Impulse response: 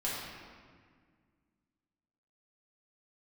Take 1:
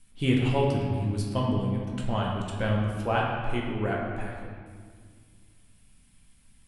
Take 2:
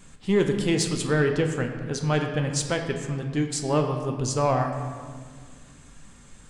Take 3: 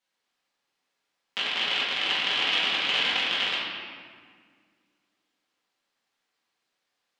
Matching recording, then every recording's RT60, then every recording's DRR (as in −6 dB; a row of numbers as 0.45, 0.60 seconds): 3; 1.8, 1.8, 1.8 seconds; −2.5, 3.5, −7.5 decibels